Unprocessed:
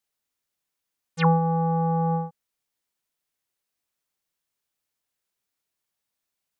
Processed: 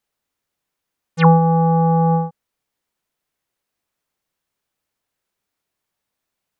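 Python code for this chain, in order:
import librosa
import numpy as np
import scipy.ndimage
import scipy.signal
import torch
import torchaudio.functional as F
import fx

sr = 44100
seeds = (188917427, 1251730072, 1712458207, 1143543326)

y = fx.high_shelf(x, sr, hz=2600.0, db=-8.0)
y = F.gain(torch.from_numpy(y), 8.5).numpy()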